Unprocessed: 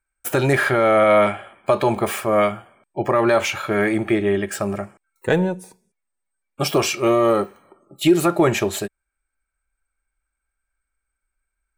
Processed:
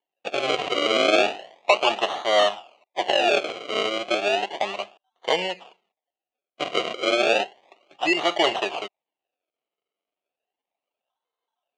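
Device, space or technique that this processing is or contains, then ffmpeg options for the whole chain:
circuit-bent sampling toy: -af "acrusher=samples=34:mix=1:aa=0.000001:lfo=1:lforange=34:lforate=0.33,highpass=590,equalizer=frequency=720:width_type=q:width=4:gain=8,equalizer=frequency=1500:width_type=q:width=4:gain=-9,equalizer=frequency=2800:width_type=q:width=4:gain=10,equalizer=frequency=5300:width_type=q:width=4:gain=-8,lowpass=frequency=5800:width=0.5412,lowpass=frequency=5800:width=1.3066,volume=-1dB"

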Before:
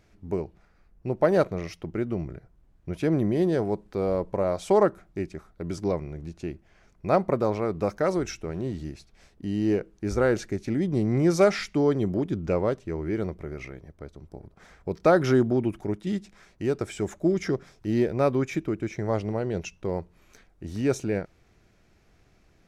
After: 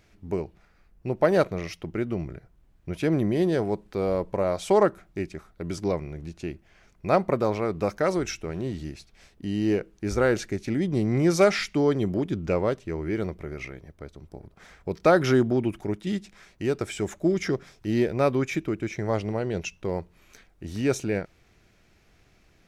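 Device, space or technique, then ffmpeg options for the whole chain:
presence and air boost: -af "equalizer=frequency=2800:width_type=o:width=1.7:gain=4.5,highshelf=frequency=9100:gain=6"

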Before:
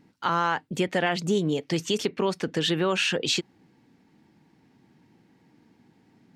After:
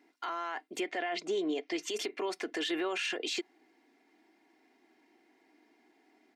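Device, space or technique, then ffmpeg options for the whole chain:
laptop speaker: -filter_complex "[0:a]asettb=1/sr,asplit=3[link_01][link_02][link_03];[link_01]atrim=end=0.804[link_04];[link_02]atrim=start=0.8:end=1.83,asetpts=PTS-STARTPTS,afade=type=in:duration=0.004:curve=qsin,afade=type=out:start_time=1.026:duration=0.004:curve=qsin,lowpass=5400[link_05];[link_03]atrim=start=1.826[link_06];[link_04][link_05]acrossfade=duration=0.004:curve1=hsin:curve2=qsin[link_07];[link_07][link_06]acrossfade=duration=0.004:curve1=qsin:curve2=hsin,highpass=frequency=300:width=0.5412,highpass=frequency=300:width=1.3066,equalizer=frequency=730:width_type=o:width=0.39:gain=5,equalizer=frequency=2100:width_type=o:width=0.41:gain=7,alimiter=limit=-22dB:level=0:latency=1:release=28,aecho=1:1:2.9:0.54,volume=-5dB"

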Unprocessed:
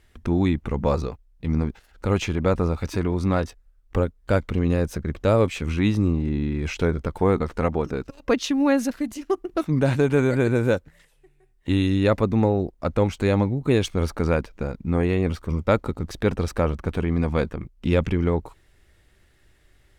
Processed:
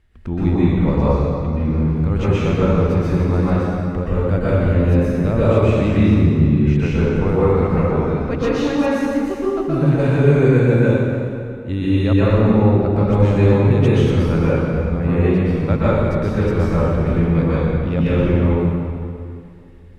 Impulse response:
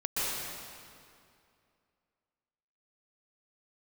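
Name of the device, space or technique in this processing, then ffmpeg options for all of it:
stairwell: -filter_complex "[1:a]atrim=start_sample=2205[link_01];[0:a][link_01]afir=irnorm=-1:irlink=0,bass=frequency=250:gain=6,treble=frequency=4000:gain=-8,volume=-4.5dB"

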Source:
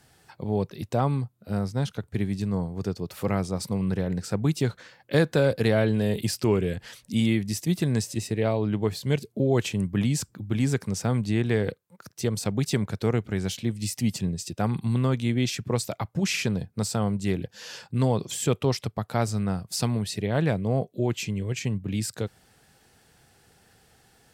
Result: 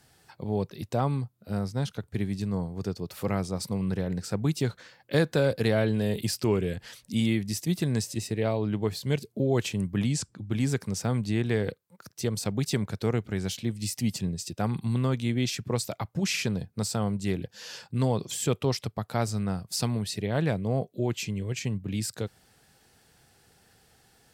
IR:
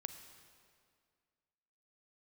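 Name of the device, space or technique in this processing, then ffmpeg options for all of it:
presence and air boost: -filter_complex "[0:a]asettb=1/sr,asplit=3[link_01][link_02][link_03];[link_01]atrim=end=10.114[link_04];[link_02]atrim=start=10.11:end=10.51,asetpts=PTS-STARTPTS,afade=type=in:duration=0.004:curve=qsin,afade=type=out:start_time=0.396:duration=0.004:curve=qsin,lowpass=frequency=9700:width=0.5412,lowpass=frequency=9700:width=1.3066[link_05];[link_03]atrim=start=10.506[link_06];[link_04][link_05]acrossfade=duration=0.004:curve1=hsin:curve2=qsin[link_07];[link_07][link_06]acrossfade=duration=0.004:curve1=qsin:curve2=hsin,equalizer=frequency=4600:width_type=o:width=0.77:gain=2,highshelf=frequency=11000:gain=3.5,volume=-2.5dB"

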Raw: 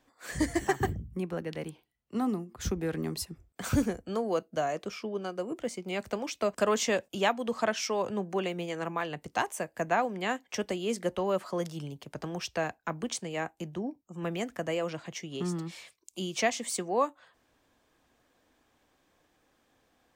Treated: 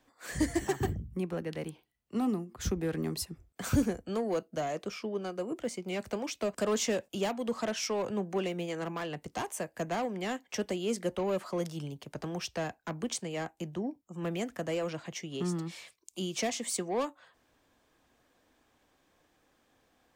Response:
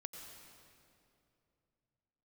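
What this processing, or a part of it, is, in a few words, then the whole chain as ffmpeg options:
one-band saturation: -filter_complex "[0:a]acrossover=split=490|4800[link_01][link_02][link_03];[link_02]asoftclip=type=tanh:threshold=-34dB[link_04];[link_01][link_04][link_03]amix=inputs=3:normalize=0"

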